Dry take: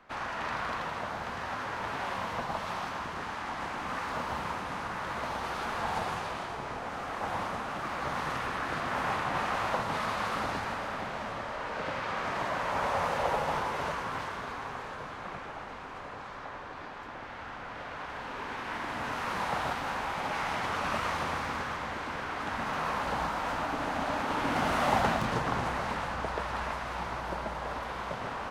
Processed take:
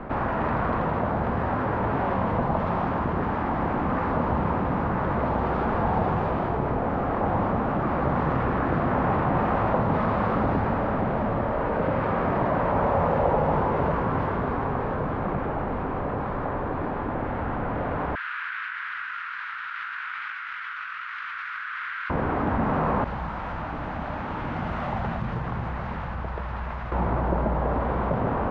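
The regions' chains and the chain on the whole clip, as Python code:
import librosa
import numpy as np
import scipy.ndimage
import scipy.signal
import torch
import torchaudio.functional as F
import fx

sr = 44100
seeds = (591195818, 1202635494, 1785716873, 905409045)

y = fx.chain(x, sr, fx.ellip_highpass(hz=1400.0, order=4, stop_db=50),
    fx.over_compress(threshold_db=-44.0, ratio=-1.0),
    fx.air_absorb(metres=84.0), at=(18.15, 22.1))
y = fx.chain(y, sr, fx.tone_stack(knobs='5-5-5'),
    fx.notch(hz=270.0, q=7.3), at=(23.04, 26.92))
y = scipy.signal.sosfilt(scipy.signal.butter(2, 2400.0, 'lowpass', fs=sr, output='sos'), y)
y = fx.tilt_shelf(y, sr, db=10.0, hz=920.0)
y = fx.env_flatten(y, sr, amount_pct=50)
y = F.gain(torch.from_numpy(y), 3.5).numpy()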